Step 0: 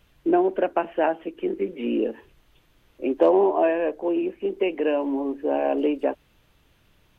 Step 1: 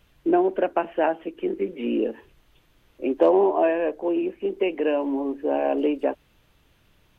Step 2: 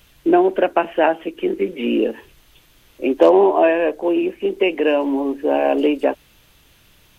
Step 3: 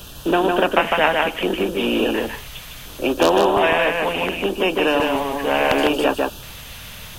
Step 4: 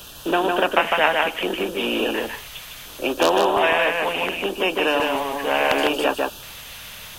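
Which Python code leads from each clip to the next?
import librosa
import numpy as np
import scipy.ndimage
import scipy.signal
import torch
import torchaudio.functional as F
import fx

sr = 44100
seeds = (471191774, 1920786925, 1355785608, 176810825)

y1 = x
y2 = fx.high_shelf(y1, sr, hz=2800.0, db=10.5)
y2 = F.gain(torch.from_numpy(y2), 5.5).numpy()
y3 = fx.filter_lfo_notch(y2, sr, shape='square', hz=0.7, low_hz=340.0, high_hz=2100.0, q=1.4)
y3 = y3 + 10.0 ** (-5.5 / 20.0) * np.pad(y3, (int(153 * sr / 1000.0), 0))[:len(y3)]
y3 = fx.spectral_comp(y3, sr, ratio=2.0)
y4 = fx.low_shelf(y3, sr, hz=310.0, db=-9.5)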